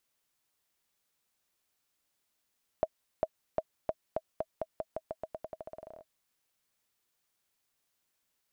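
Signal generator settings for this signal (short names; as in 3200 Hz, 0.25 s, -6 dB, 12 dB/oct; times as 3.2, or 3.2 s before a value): bouncing ball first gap 0.40 s, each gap 0.88, 637 Hz, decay 47 ms -15.5 dBFS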